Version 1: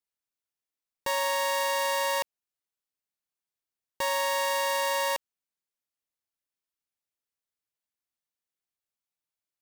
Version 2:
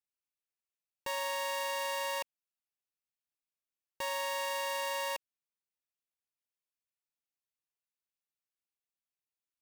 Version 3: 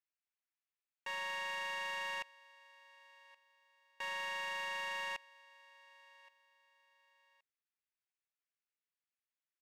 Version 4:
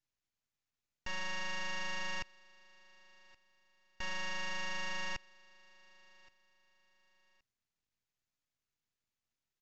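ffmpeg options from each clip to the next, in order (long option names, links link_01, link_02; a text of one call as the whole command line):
ffmpeg -i in.wav -af "equalizer=frequency=2600:width=5.6:gain=5.5,volume=-8dB" out.wav
ffmpeg -i in.wav -af "bandpass=frequency=1900:width_type=q:width=1.3:csg=0,aecho=1:1:1122|2244:0.0708|0.0219,asoftclip=type=tanh:threshold=-32.5dB,volume=1.5dB" out.wav
ffmpeg -i in.wav -af "bass=frequency=250:gain=15,treble=frequency=4000:gain=3,aeval=exprs='max(val(0),0)':channel_layout=same,aresample=16000,aresample=44100,volume=6dB" out.wav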